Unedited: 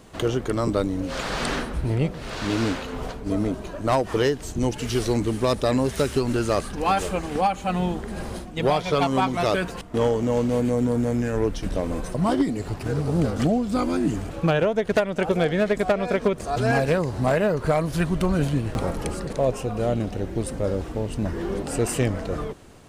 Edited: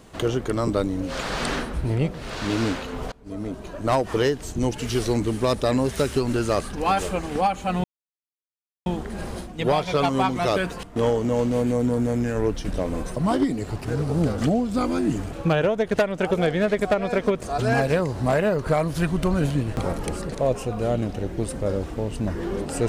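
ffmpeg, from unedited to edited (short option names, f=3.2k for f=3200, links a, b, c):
-filter_complex "[0:a]asplit=3[a][b][c];[a]atrim=end=3.12,asetpts=PTS-STARTPTS,afade=t=out:st=3.116:d=0.004:c=hsin:silence=0.0707946[d];[b]atrim=start=3.12:end=7.84,asetpts=PTS-STARTPTS,afade=t=in:d=0.73:silence=0.0707946,afade=t=out:st=4.716:d=0.004:c=hsin,apad=pad_dur=1.02[e];[c]atrim=start=7.84,asetpts=PTS-STARTPTS,afade=t=in:d=0.004:c=hsin[f];[d][e][f]concat=n=3:v=0:a=1"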